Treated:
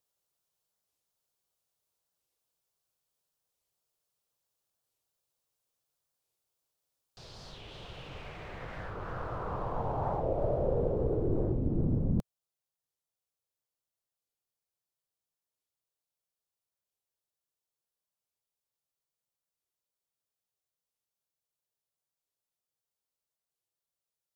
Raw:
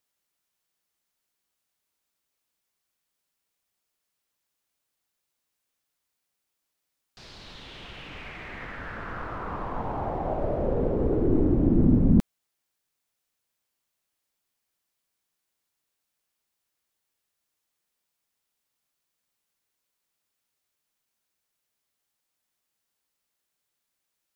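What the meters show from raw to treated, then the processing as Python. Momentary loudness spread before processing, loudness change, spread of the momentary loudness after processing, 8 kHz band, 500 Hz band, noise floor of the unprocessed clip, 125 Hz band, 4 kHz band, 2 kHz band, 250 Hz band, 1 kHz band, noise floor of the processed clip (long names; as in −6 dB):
21 LU, −7.0 dB, 16 LU, can't be measured, −3.5 dB, −82 dBFS, −5.5 dB, −5.0 dB, −8.5 dB, −11.0 dB, −3.5 dB, below −85 dBFS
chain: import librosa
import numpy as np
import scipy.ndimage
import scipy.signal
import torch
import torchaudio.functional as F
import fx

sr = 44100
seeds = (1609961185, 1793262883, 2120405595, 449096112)

y = fx.rider(x, sr, range_db=4, speed_s=2.0)
y = fx.graphic_eq(y, sr, hz=(125, 250, 500, 2000), db=(6, -7, 5, -8))
y = fx.record_warp(y, sr, rpm=45.0, depth_cents=250.0)
y = F.gain(torch.from_numpy(y), -6.5).numpy()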